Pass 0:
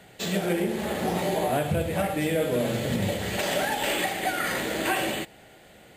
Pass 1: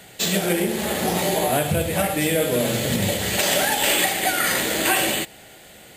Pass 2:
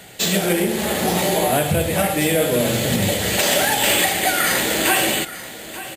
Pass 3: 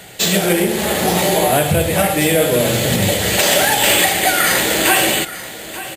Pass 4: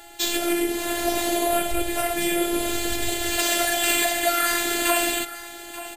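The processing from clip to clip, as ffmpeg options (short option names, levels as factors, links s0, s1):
-af "highshelf=f=3300:g=10.5,volume=1.5"
-filter_complex "[0:a]asplit=2[s0][s1];[s1]asoftclip=type=tanh:threshold=0.141,volume=0.447[s2];[s0][s2]amix=inputs=2:normalize=0,aecho=1:1:884:0.178"
-af "equalizer=f=240:t=o:w=0.38:g=-4,volume=1.58"
-af "afreqshift=-57,afftfilt=real='hypot(re,im)*cos(PI*b)':imag='0':win_size=512:overlap=0.75,aeval=exprs='val(0)+0.00562*sin(2*PI*830*n/s)':c=same,volume=0.596"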